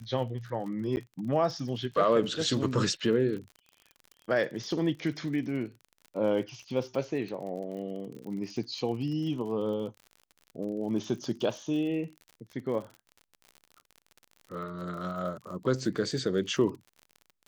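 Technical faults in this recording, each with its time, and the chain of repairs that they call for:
crackle 49 per s -39 dBFS
0.96–0.97 s: dropout 9.7 ms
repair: de-click; interpolate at 0.96 s, 9.7 ms

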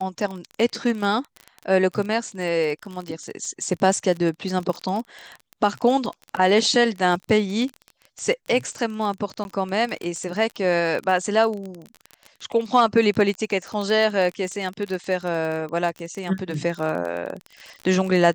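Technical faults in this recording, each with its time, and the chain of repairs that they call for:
crackle 29 per s -27 dBFS
9.44–9.45 s: dropout 11 ms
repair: de-click; interpolate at 9.44 s, 11 ms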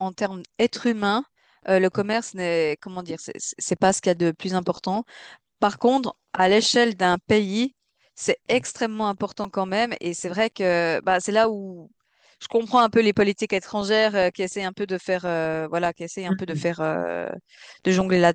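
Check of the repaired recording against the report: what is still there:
nothing left

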